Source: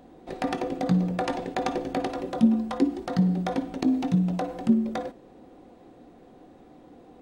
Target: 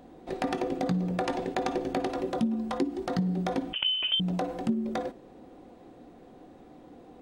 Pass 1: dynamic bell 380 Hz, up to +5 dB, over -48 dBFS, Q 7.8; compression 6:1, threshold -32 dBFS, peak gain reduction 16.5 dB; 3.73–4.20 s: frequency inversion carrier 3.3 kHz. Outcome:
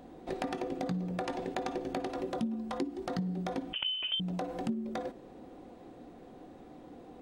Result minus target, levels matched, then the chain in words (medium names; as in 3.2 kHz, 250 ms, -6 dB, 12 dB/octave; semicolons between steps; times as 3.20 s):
compression: peak gain reduction +6.5 dB
dynamic bell 380 Hz, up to +5 dB, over -48 dBFS, Q 7.8; compression 6:1, threshold -24.5 dBFS, peak gain reduction 10 dB; 3.73–4.20 s: frequency inversion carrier 3.3 kHz